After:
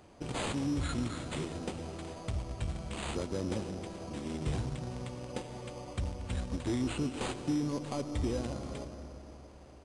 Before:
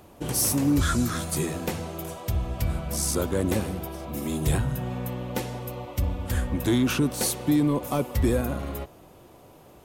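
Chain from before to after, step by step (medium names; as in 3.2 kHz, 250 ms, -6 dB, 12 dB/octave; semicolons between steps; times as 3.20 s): in parallel at -11.5 dB: bit crusher 4-bit; on the sum: compression 1.5:1, threshold -33 dBFS, peak gain reduction 6 dB; on a send at -9 dB: reverberation RT60 3.3 s, pre-delay 70 ms; on the sum: careless resampling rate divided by 8×, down none, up hold; dynamic bell 1.7 kHz, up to -6 dB, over -48 dBFS, Q 1.4; resampled via 22.05 kHz; trim -6.5 dB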